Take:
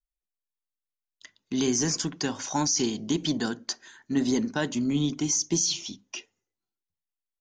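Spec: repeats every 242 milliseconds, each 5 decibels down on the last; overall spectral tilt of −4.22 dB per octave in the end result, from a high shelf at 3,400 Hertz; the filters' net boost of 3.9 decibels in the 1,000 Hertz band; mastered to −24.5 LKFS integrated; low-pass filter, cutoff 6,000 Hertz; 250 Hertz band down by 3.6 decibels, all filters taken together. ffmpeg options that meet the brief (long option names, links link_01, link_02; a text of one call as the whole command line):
ffmpeg -i in.wav -af "lowpass=6000,equalizer=frequency=250:width_type=o:gain=-4.5,equalizer=frequency=1000:width_type=o:gain=5.5,highshelf=frequency=3400:gain=-8,aecho=1:1:242|484|726|968|1210|1452|1694:0.562|0.315|0.176|0.0988|0.0553|0.031|0.0173,volume=5.5dB" out.wav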